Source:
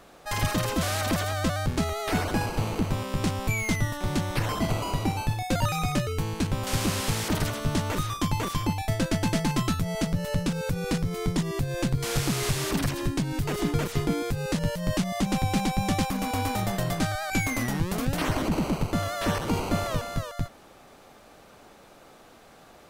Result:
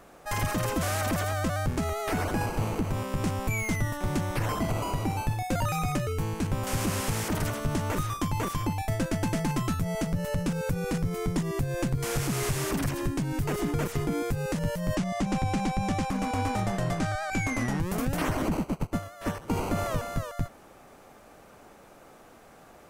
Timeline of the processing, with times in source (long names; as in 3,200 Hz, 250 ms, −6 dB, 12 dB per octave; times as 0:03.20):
0:14.95–0:17.80: low-pass filter 7,600 Hz
0:18.57–0:19.50: expander for the loud parts 2.5 to 1, over −35 dBFS
whole clip: parametric band 3,900 Hz −7 dB 0.96 octaves; brickwall limiter −18 dBFS